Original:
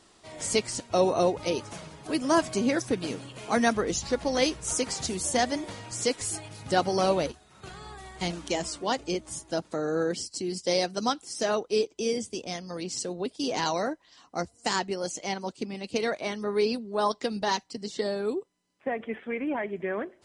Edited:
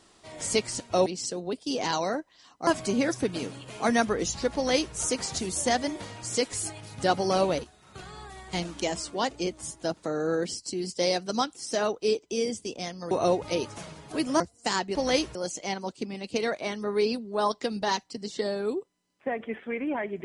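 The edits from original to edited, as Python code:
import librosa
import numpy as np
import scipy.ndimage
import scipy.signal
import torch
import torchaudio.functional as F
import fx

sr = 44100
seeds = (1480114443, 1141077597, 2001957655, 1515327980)

y = fx.edit(x, sr, fx.swap(start_s=1.06, length_s=1.29, other_s=12.79, other_length_s=1.61),
    fx.duplicate(start_s=4.23, length_s=0.4, to_s=14.95), tone=tone)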